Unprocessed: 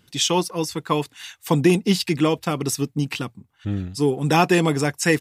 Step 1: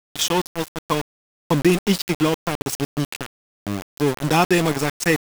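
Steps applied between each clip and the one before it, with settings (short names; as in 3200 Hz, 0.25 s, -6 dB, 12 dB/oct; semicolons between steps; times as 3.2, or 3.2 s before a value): sample gate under -21 dBFS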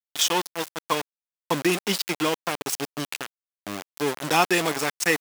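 HPF 630 Hz 6 dB/oct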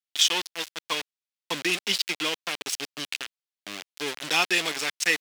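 weighting filter D; gain -8 dB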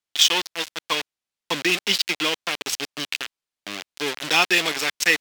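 decimation joined by straight lines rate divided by 2×; gain +5 dB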